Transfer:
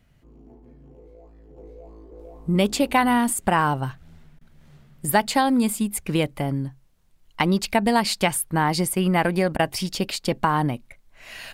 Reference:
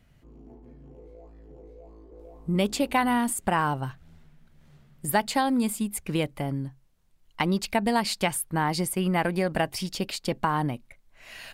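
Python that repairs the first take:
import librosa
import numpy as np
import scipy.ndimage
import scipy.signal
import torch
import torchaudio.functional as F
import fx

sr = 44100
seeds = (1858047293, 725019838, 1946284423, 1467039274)

y = fx.fix_interpolate(x, sr, at_s=(4.39, 9.57), length_ms=20.0)
y = fx.gain(y, sr, db=fx.steps((0.0, 0.0), (1.57, -4.5)))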